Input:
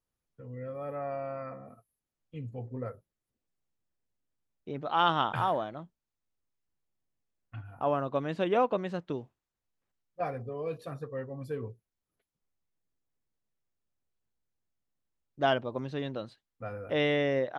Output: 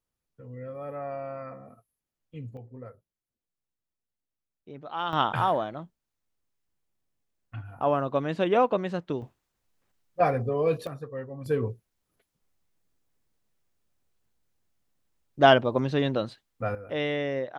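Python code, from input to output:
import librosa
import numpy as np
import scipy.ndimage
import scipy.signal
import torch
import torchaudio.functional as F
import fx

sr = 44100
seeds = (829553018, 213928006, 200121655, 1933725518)

y = fx.gain(x, sr, db=fx.steps((0.0, 0.5), (2.57, -6.0), (5.13, 4.0), (9.22, 10.5), (10.87, 1.0), (11.46, 9.5), (16.75, -1.5)))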